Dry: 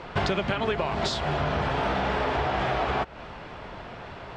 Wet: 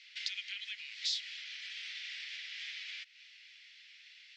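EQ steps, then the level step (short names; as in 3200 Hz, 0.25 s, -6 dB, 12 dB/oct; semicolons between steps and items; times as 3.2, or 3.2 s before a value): elliptic high-pass 2000 Hz, stop band 60 dB; LPF 5900 Hz 24 dB/oct; differentiator; +3.0 dB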